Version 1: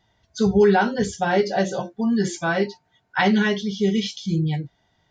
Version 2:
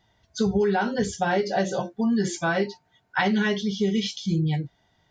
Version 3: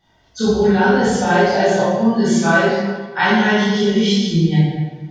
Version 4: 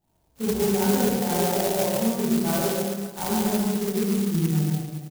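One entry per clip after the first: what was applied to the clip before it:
compressor, threshold -19 dBFS, peak gain reduction 7.5 dB
reverb RT60 1.4 s, pre-delay 16 ms, DRR -11 dB; gain -1 dB
median filter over 25 samples; on a send: echo 0.142 s -3.5 dB; on the sum: clock jitter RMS 0.13 ms; gain -9 dB

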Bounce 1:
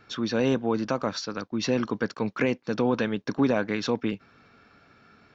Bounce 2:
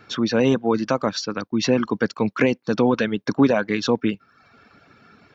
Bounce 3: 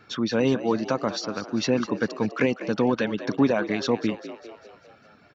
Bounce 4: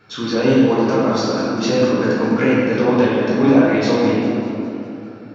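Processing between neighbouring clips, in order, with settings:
HPF 120 Hz 6 dB/oct; reverb removal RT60 0.7 s; low shelf 230 Hz +4.5 dB; gain +6 dB
frequency-shifting echo 0.2 s, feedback 55%, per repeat +63 Hz, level -13.5 dB; gain -4 dB
reverb RT60 2.6 s, pre-delay 7 ms, DRR -8.5 dB; gain -1 dB

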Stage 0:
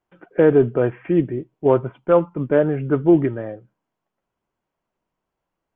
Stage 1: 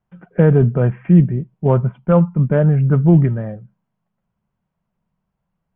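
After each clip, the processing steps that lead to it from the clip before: LPF 2500 Hz 6 dB/oct; resonant low shelf 240 Hz +8 dB, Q 3; gain +1 dB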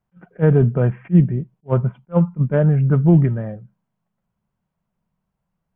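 attack slew limiter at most 470 dB/s; gain -1.5 dB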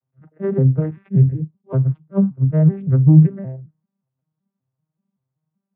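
arpeggiated vocoder minor triad, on C3, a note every 0.191 s; gain +1.5 dB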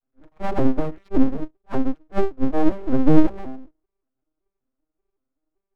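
full-wave rectifier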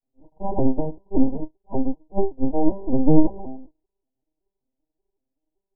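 Chebyshev low-pass 990 Hz, order 10

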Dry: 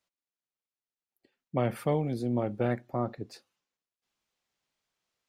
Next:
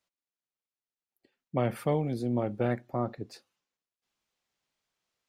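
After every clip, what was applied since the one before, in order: nothing audible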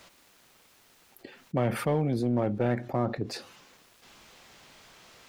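high shelf 5100 Hz -6.5 dB; in parallel at -5 dB: hard clip -26 dBFS, distortion -10 dB; on the sum: fast leveller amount 50%; gain -2.5 dB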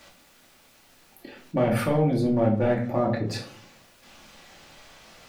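reverb RT60 0.45 s, pre-delay 3 ms, DRR -2 dB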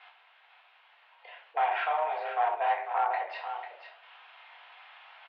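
overloaded stage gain 17 dB; echo 0.495 s -9 dB; mistuned SSB +160 Hz 540–3100 Hz

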